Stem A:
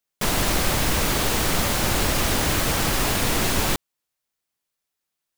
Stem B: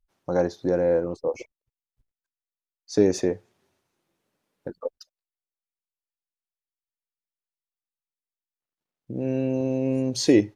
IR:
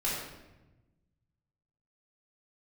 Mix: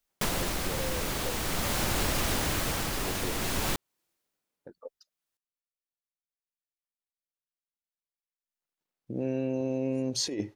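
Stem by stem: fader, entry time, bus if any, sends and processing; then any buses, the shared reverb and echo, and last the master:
+1.5 dB, 0.00 s, no send, automatic ducking −11 dB, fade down 0.55 s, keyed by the second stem
0:08.31 −14 dB → 0:08.52 −2 dB, 0.00 s, no send, low-shelf EQ 240 Hz −4.5 dB; compressor whose output falls as the input rises −22 dBFS, ratio −0.5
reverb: not used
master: downward compressor 6 to 1, threshold −25 dBFS, peak gain reduction 9 dB

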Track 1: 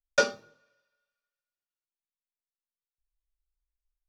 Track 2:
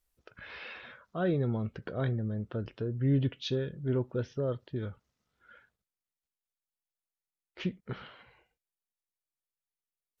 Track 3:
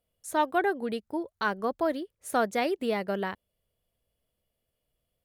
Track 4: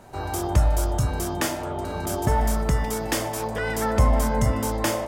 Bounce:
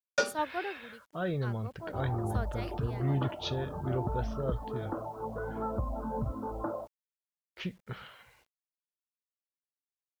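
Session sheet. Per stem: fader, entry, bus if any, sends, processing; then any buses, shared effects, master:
−5.0 dB, 0.00 s, no send, no processing
+0.5 dB, 0.00 s, no send, parametric band 290 Hz −8 dB 1.5 octaves
−4.0 dB, 0.00 s, no send, multiband upward and downward expander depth 100%; automatic ducking −13 dB, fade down 0.90 s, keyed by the second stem
−6.0 dB, 1.80 s, no send, Chebyshev low-pass filter 1,400 Hz, order 6; reverb reduction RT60 1.2 s; downward compressor 12 to 1, threshold −23 dBFS, peak gain reduction 10 dB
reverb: not used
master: bit reduction 11 bits

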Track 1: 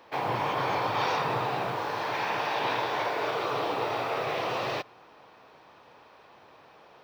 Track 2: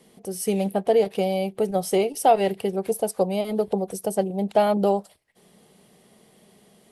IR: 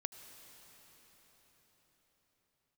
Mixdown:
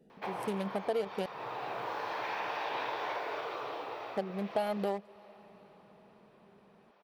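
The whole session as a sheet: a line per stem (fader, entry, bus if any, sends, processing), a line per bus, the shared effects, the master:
−3.5 dB, 0.10 s, send −13.5 dB, bass and treble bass −10 dB, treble −5 dB; automatic ducking −14 dB, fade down 1.00 s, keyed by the second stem
−2.5 dB, 0.00 s, muted 0:01.26–0:04.16, send −18.5 dB, adaptive Wiener filter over 41 samples; tilt shelving filter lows −4 dB, about 790 Hz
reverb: on, pre-delay 71 ms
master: downward compressor 2 to 1, threshold −36 dBFS, peak gain reduction 10.5 dB

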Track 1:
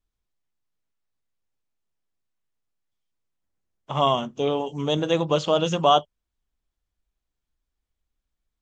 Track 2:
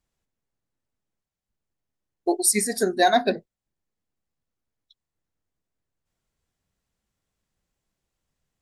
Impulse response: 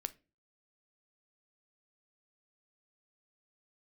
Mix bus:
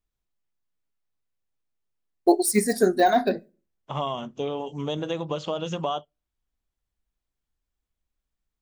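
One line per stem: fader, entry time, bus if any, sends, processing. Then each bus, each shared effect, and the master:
−3.0 dB, 0.00 s, send −20 dB, high-shelf EQ 5,700 Hz −4.5 dB; downward compressor 10 to 1, threshold −22 dBFS, peak gain reduction 9.5 dB
+2.0 dB, 0.00 s, send −6 dB, de-essing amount 100%; noise gate with hold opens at −42 dBFS; high-shelf EQ 10,000 Hz +11 dB; automatic ducking −16 dB, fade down 1.15 s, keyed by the first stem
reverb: on, pre-delay 7 ms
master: no processing

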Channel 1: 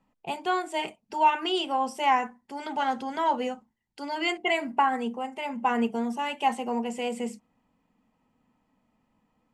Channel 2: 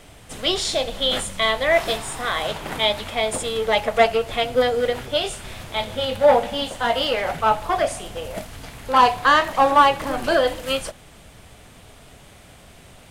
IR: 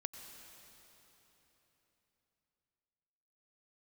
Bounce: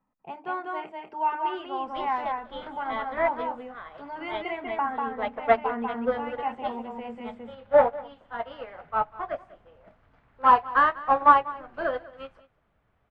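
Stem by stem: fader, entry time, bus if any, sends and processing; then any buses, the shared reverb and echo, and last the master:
−8.0 dB, 0.00 s, no send, echo send −3 dB, no processing
−2.5 dB, 1.50 s, no send, echo send −19 dB, soft clipping −5 dBFS, distortion −22 dB; expander for the loud parts 2.5 to 1, over −26 dBFS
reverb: not used
echo: single-tap delay 194 ms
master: low-pass filter 1,800 Hz 12 dB per octave; parametric band 1,300 Hz +6 dB 1.2 octaves

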